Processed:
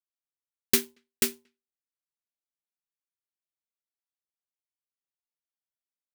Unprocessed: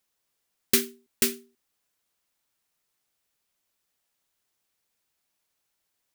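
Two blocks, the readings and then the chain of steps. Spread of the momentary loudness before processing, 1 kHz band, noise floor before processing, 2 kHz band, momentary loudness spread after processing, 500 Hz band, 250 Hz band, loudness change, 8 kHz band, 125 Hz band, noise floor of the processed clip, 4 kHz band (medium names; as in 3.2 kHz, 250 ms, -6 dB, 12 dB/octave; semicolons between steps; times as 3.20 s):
16 LU, 0.0 dB, -79 dBFS, -1.0 dB, 7 LU, -2.0 dB, -2.5 dB, -1.5 dB, -1.5 dB, -0.5 dB, under -85 dBFS, -1.0 dB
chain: speakerphone echo 230 ms, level -25 dB; power-law waveshaper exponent 1.4; trim +2.5 dB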